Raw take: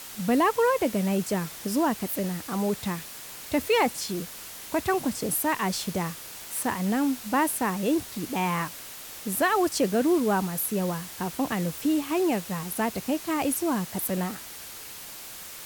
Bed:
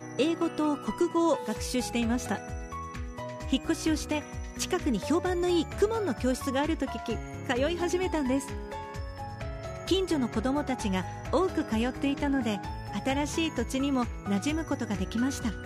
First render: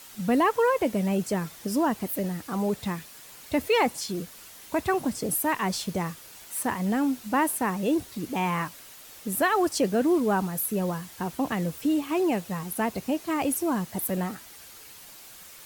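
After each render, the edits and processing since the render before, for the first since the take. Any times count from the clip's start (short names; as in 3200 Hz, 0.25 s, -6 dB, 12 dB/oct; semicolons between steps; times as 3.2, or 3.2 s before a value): denoiser 7 dB, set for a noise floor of -42 dBFS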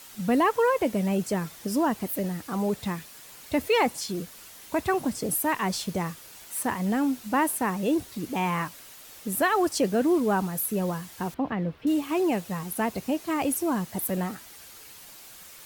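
11.34–11.87 air absorption 360 m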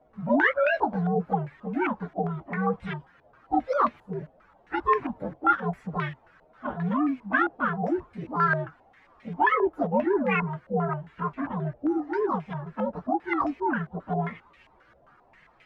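inharmonic rescaling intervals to 130%; stepped low-pass 7.5 Hz 640–2300 Hz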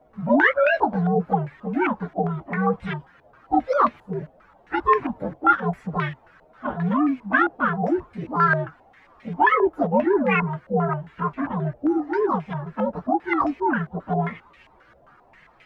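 gain +4.5 dB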